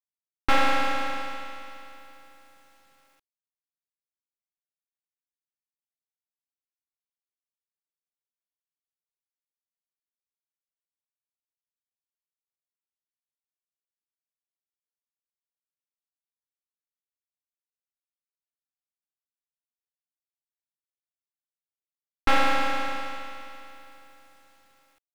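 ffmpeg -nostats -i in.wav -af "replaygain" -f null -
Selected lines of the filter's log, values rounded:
track_gain = +15.5 dB
track_peak = 0.268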